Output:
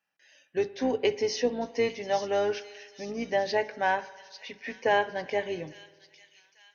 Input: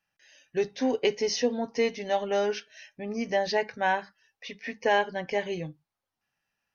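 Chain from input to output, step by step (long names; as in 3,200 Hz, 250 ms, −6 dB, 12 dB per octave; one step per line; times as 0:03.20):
sub-octave generator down 2 octaves, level −4 dB
high-pass filter 230 Hz 12 dB per octave
high-shelf EQ 3,900 Hz −5.5 dB
on a send: delay with a high-pass on its return 848 ms, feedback 48%, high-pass 4,300 Hz, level −7 dB
on the sum: spring reverb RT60 1.6 s, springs 51 ms, chirp 75 ms, DRR 17 dB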